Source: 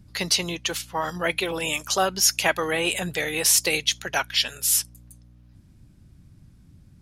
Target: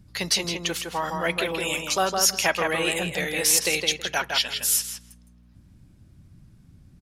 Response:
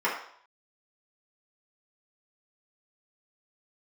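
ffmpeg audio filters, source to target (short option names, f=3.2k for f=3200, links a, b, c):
-filter_complex "[0:a]asplit=2[a][b];[b]adelay=162,lowpass=f=2.8k:p=1,volume=-3.5dB,asplit=2[c][d];[d]adelay=162,lowpass=f=2.8k:p=1,volume=0.19,asplit=2[e][f];[f]adelay=162,lowpass=f=2.8k:p=1,volume=0.19[g];[a][c][e][g]amix=inputs=4:normalize=0,asplit=2[h][i];[1:a]atrim=start_sample=2205,atrim=end_sample=3528[j];[i][j]afir=irnorm=-1:irlink=0,volume=-31.5dB[k];[h][k]amix=inputs=2:normalize=0,volume=-1.5dB"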